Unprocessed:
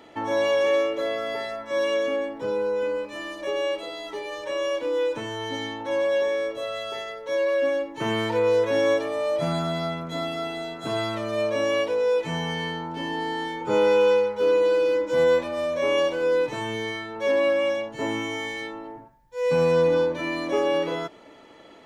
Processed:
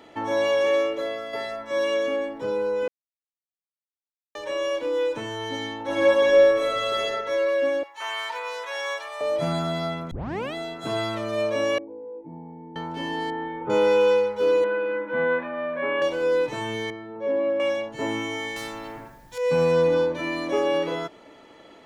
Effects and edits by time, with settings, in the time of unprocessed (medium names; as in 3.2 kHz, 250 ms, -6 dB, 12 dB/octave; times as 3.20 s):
0.88–1.33 s: fade out, to -6.5 dB
2.88–4.35 s: mute
5.83–7.09 s: reverb throw, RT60 1.3 s, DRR -6.5 dB
7.83–9.21 s: high-pass 790 Hz 24 dB/octave
10.11 s: tape start 0.43 s
11.78–12.76 s: cascade formant filter u
13.30–13.70 s: Gaussian low-pass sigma 3.9 samples
14.64–16.02 s: cabinet simulation 180–2400 Hz, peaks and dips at 220 Hz +7 dB, 330 Hz -6 dB, 530 Hz -6 dB, 1.6 kHz +8 dB
16.90–17.60 s: band-pass filter 260 Hz, Q 0.51
18.56–19.38 s: spectrum-flattening compressor 2:1